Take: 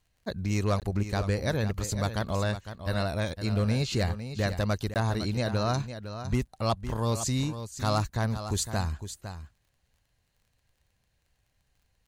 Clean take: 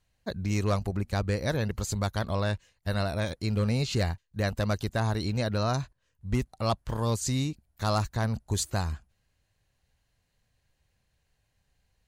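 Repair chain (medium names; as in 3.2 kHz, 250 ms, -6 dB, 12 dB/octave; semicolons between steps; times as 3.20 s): de-click; interpolate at 0.80/4.94 s, 18 ms; inverse comb 507 ms -10.5 dB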